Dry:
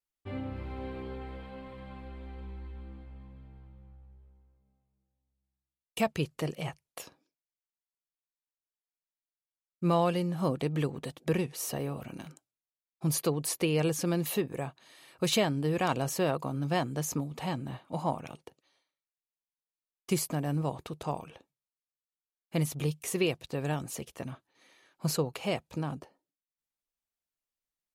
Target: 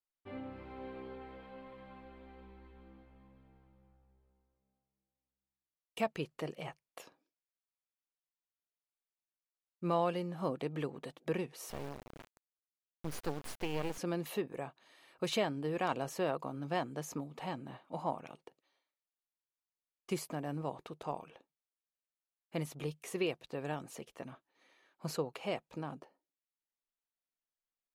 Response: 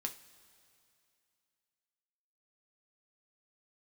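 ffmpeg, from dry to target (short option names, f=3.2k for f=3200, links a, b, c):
-filter_complex "[0:a]equalizer=f=78:w=0.65:g=-14,asettb=1/sr,asplit=3[a][b][c];[a]atrim=end=11.704[d];[b]atrim=start=11.7:end=13.98,asetpts=PTS-STARTPTS,afade=t=in:d=0.004:c=qsin,afade=t=out:st=2.276:d=0.004:c=qsin,acrusher=bits=4:dc=4:mix=0:aa=0.000001[e];[c]atrim=start=13.976[f];[d][e]acrossfade=d=0.004:c1=hsin:c2=qsin[g];[g][f]acrossfade=d=0.004:c1=qsin:c2=hsin,highshelf=f=4.2k:g=-10.5,volume=-3.5dB"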